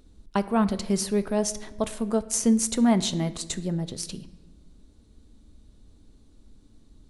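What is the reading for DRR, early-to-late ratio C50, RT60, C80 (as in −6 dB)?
11.5 dB, 15.5 dB, 1.2 s, 17.5 dB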